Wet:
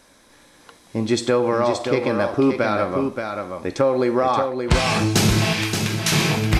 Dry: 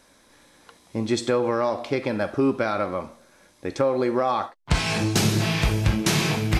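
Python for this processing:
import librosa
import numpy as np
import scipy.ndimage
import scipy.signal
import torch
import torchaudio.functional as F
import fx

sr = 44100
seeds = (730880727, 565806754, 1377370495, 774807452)

y = fx.highpass(x, sr, hz=1400.0, slope=12, at=(5.53, 6.12))
y = y + 10.0 ** (-6.0 / 20.0) * np.pad(y, (int(576 * sr / 1000.0), 0))[:len(y)]
y = y * librosa.db_to_amplitude(3.5)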